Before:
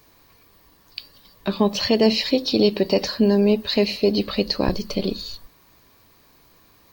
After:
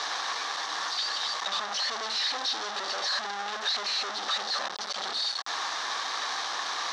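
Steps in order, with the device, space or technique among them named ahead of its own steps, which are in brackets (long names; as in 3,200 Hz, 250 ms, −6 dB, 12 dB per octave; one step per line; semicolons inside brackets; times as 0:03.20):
home computer beeper (sign of each sample alone; loudspeaker in its box 730–5,900 Hz, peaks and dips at 790 Hz +9 dB, 1,200 Hz +8 dB, 1,700 Hz +7 dB, 2,500 Hz −4 dB, 3,700 Hz +8 dB, 5,800 Hz +7 dB)
level −9 dB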